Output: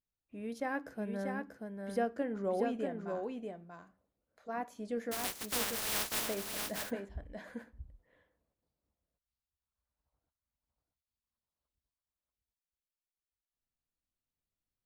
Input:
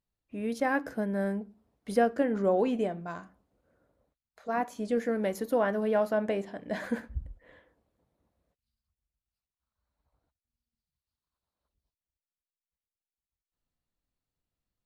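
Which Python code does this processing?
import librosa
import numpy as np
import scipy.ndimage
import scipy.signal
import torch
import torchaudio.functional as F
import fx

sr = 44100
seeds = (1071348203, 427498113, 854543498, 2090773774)

p1 = fx.spec_flatten(x, sr, power=0.12, at=(5.11, 6.26), fade=0.02)
p2 = p1 + fx.echo_single(p1, sr, ms=637, db=-4.5, dry=0)
y = F.gain(torch.from_numpy(p2), -8.5).numpy()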